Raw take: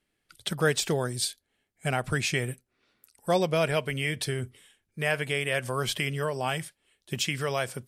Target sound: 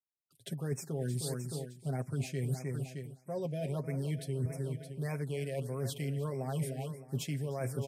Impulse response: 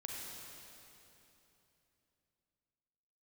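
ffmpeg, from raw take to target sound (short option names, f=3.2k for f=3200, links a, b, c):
-filter_complex "[0:a]acrossover=split=730|5800[a][b][c];[a]dynaudnorm=f=200:g=3:m=8dB[d];[b]aeval=exprs='clip(val(0),-1,0.0251)':c=same[e];[c]highshelf=f=10k:g=10.5[f];[d][e][f]amix=inputs=3:normalize=0,agate=range=-33dB:threshold=-46dB:ratio=3:detection=peak,highpass=f=110:w=0.5412,highpass=f=110:w=1.3066,aecho=1:1:7.4:0.61,aecho=1:1:309|618|927|1236|1545:0.2|0.104|0.054|0.0281|0.0146,areverse,acompressor=threshold=-29dB:ratio=16,areverse,lowshelf=f=300:g=6.5,afftfilt=real='re*(1-between(b*sr/1024,980*pow(3700/980,0.5+0.5*sin(2*PI*1.6*pts/sr))/1.41,980*pow(3700/980,0.5+0.5*sin(2*PI*1.6*pts/sr))*1.41))':imag='im*(1-between(b*sr/1024,980*pow(3700/980,0.5+0.5*sin(2*PI*1.6*pts/sr))/1.41,980*pow(3700/980,0.5+0.5*sin(2*PI*1.6*pts/sr))*1.41))':win_size=1024:overlap=0.75,volume=-6.5dB"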